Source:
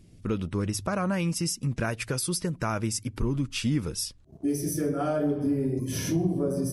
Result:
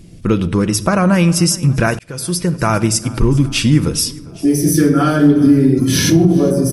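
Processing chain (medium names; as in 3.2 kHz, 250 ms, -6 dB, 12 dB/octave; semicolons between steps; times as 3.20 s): 4.74–6.10 s: fifteen-band graphic EQ 250 Hz +5 dB, 630 Hz -8 dB, 1.6 kHz +5 dB, 4 kHz +10 dB; feedback delay 406 ms, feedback 54%, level -22 dB; simulated room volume 3000 m³, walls furnished, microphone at 0.76 m; 1.99–2.93 s: fade in equal-power; loudness maximiser +15 dB; trim -1 dB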